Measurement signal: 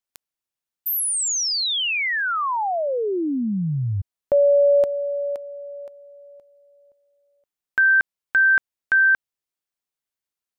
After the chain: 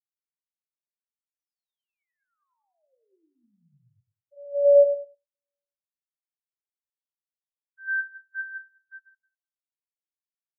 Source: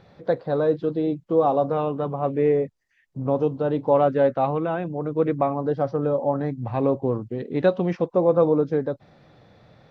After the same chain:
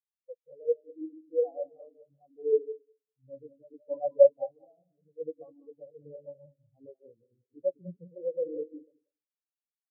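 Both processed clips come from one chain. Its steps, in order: backward echo that repeats 101 ms, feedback 67%, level -3 dB; spectral contrast expander 4:1; trim -4.5 dB

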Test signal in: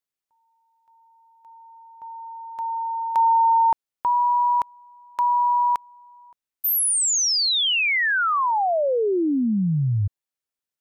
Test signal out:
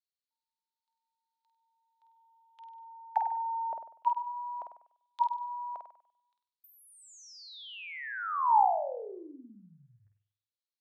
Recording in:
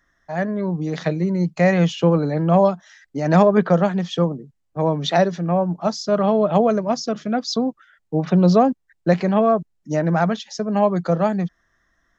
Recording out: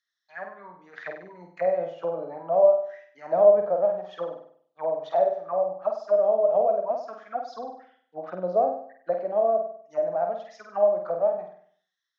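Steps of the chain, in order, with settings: bass shelf 190 Hz -7 dB; auto-wah 620–4200 Hz, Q 5.9, down, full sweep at -17.5 dBFS; flutter echo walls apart 8.4 m, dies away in 0.56 s

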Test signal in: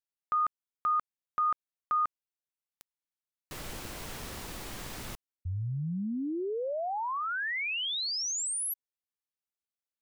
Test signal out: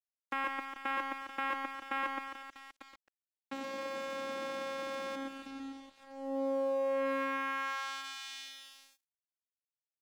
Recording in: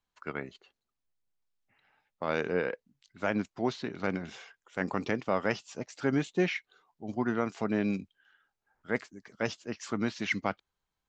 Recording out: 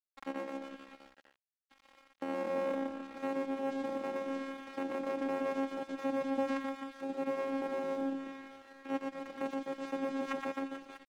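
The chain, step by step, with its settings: spectral levelling over time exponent 0.6; in parallel at +0.5 dB: compression 5:1, threshold -38 dBFS; on the sum: bass shelf 200 Hz -6 dB; band-stop 4.1 kHz, Q 22; vocoder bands 4, saw 271 Hz; reverse bouncing-ball echo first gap 120 ms, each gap 1.2×, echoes 5; level-controlled noise filter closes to 1.2 kHz, open at -27.5 dBFS; treble shelf 4.2 kHz -8.5 dB; on a send: feedback echo behind a high-pass 176 ms, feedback 64%, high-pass 2.8 kHz, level -9 dB; on the sum: crossover distortion -46 dBFS; tape noise reduction on one side only encoder only; trim -7 dB

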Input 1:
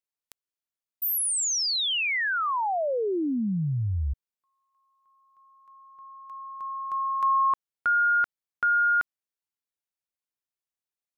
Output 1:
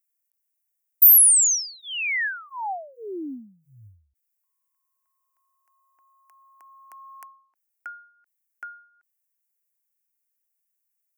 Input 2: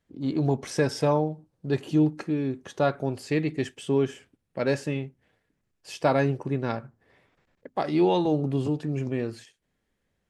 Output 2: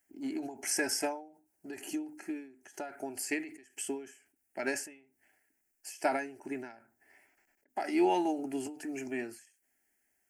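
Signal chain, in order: RIAA curve recording; static phaser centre 750 Hz, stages 8; endings held to a fixed fall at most 110 dB/s

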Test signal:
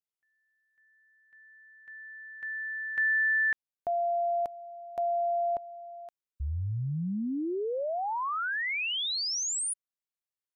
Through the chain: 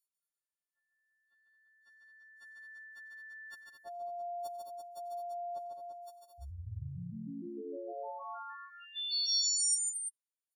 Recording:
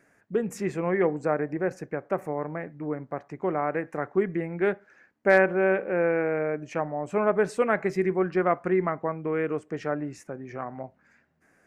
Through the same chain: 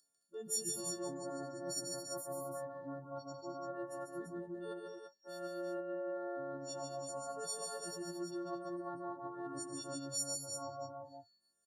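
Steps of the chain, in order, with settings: partials quantised in pitch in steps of 4 st; spectral noise reduction 21 dB; reverse; compression 12:1, threshold -35 dBFS; reverse; Butterworth band-stop 2.3 kHz, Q 1.1; resonant high shelf 2.9 kHz +9.5 dB, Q 1.5; on a send: multi-tap echo 93/146/213/224/338/341 ms -19/-4.5/-9.5/-9/-17/-6.5 dB; on the sum: trim -7.5 dB

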